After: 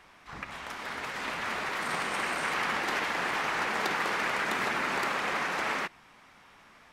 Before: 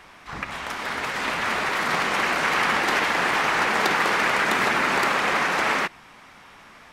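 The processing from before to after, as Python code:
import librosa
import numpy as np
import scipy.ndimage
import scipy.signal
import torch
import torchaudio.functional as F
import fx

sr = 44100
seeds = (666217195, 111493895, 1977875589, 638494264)

y = fx.peak_eq(x, sr, hz=8700.0, db=10.5, octaves=0.21, at=(1.82, 2.53))
y = y * 10.0 ** (-8.5 / 20.0)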